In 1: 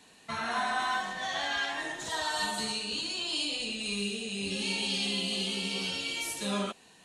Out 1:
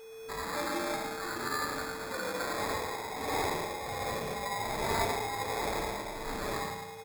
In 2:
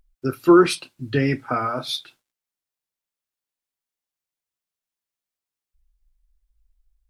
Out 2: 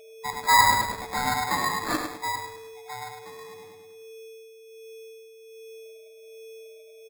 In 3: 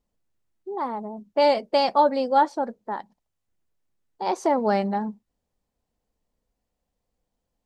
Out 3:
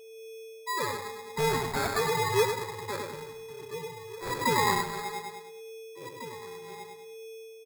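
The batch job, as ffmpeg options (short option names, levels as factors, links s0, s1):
-filter_complex "[0:a]afftfilt=real='real(if(lt(b,1008),b+24*(1-2*mod(floor(b/24),2)),b),0)':imag='imag(if(lt(b,1008),b+24*(1-2*mod(floor(b/24),2)),b),0)':win_size=2048:overlap=0.75,equalizer=f=130:t=o:w=2.7:g=-11.5,asplit=2[s0][s1];[s1]aecho=0:1:103|206|309|412|515|618|721:0.596|0.31|0.161|0.0838|0.0436|0.0226|0.0118[s2];[s0][s2]amix=inputs=2:normalize=0,acrossover=split=160[s3][s4];[s3]acompressor=threshold=0.0178:ratio=8[s5];[s5][s4]amix=inputs=2:normalize=0,aeval=exprs='val(0)+0.00891*sin(2*PI*2400*n/s)':c=same,asplit=2[s6][s7];[s7]adelay=12,volume=0.251[s8];[s6][s8]amix=inputs=2:normalize=0,asplit=2[s9][s10];[s10]adelay=1749,volume=0.224,highshelf=f=4000:g=-39.4[s11];[s9][s11]amix=inputs=2:normalize=0,acrossover=split=1700[s12][s13];[s12]aeval=exprs='val(0)*(1-0.7/2+0.7/2*cos(2*PI*1.3*n/s))':c=same[s14];[s13]aeval=exprs='val(0)*(1-0.7/2-0.7/2*cos(2*PI*1.3*n/s))':c=same[s15];[s14][s15]amix=inputs=2:normalize=0,afreqshift=93,acrusher=samples=15:mix=1:aa=0.000001,acontrast=70,adynamicequalizer=threshold=0.00631:dfrequency=240:dqfactor=3:tfrequency=240:tqfactor=3:attack=5:release=100:ratio=0.375:range=2:mode=boostabove:tftype=bell,volume=0.501"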